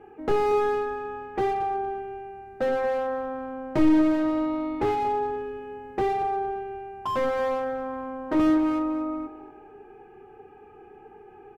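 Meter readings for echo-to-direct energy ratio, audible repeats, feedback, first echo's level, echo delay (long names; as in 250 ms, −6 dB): −13.5 dB, 3, 30%, −14.0 dB, 233 ms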